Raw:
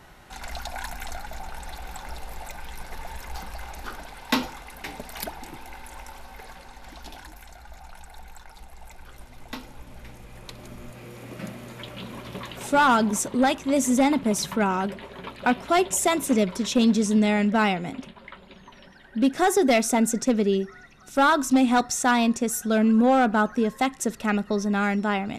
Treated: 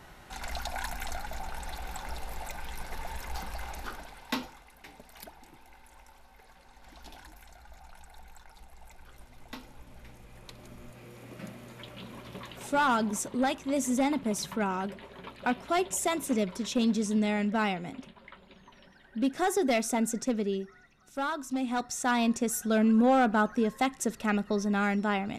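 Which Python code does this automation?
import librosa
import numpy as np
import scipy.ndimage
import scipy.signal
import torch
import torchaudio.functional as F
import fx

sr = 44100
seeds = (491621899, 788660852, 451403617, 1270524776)

y = fx.gain(x, sr, db=fx.line((3.74, -1.5), (4.72, -14.0), (6.46, -14.0), (7.08, -7.0), (20.22, -7.0), (21.43, -14.0), (22.34, -4.0)))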